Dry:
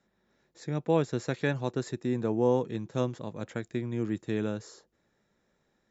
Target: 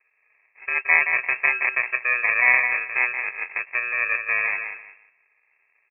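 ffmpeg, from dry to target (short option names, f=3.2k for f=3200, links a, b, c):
-filter_complex "[0:a]asplit=2[a][b];[b]aecho=0:1:172|344|516:0.447|0.0983|0.0216[c];[a][c]amix=inputs=2:normalize=0,acrusher=samples=36:mix=1:aa=0.000001,lowpass=f=2.3k:t=q:w=0.5098,lowpass=f=2.3k:t=q:w=0.6013,lowpass=f=2.3k:t=q:w=0.9,lowpass=f=2.3k:t=q:w=2.563,afreqshift=-2700,equalizer=f=160:t=o:w=0.67:g=6,equalizer=f=400:t=o:w=0.67:g=10,equalizer=f=1.6k:t=o:w=0.67:g=12,volume=2.5dB"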